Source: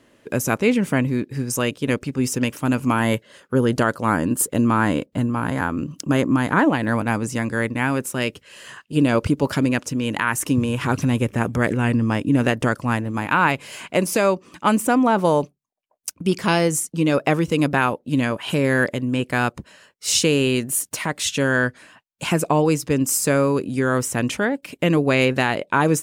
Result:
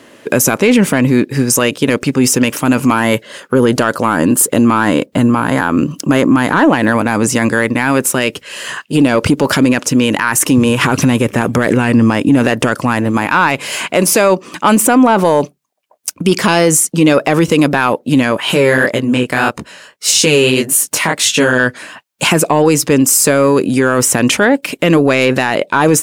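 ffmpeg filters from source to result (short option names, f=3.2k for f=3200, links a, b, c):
-filter_complex "[0:a]asettb=1/sr,asplit=3[a][b][c];[a]atrim=end=18.404[d];[b]atrim=start=18.4:end=21.6,asetpts=PTS-STARTPTS,afade=t=in:d=0.004:c=qsin,afade=t=out:st=3.196:d=0.004:c=qsin,flanger=delay=17.5:depth=7.3:speed=1.7[e];[c]atrim=start=21.596[f];[d][e]acrossfade=d=0.004:c1=hsin:c2=qsin[g];[g][f]acrossfade=d=0.004:c1=qsin:c2=hsin,highpass=f=240:p=1,acontrast=69,alimiter=level_in=10.5dB:limit=-1dB:release=50:level=0:latency=1,volume=-1dB"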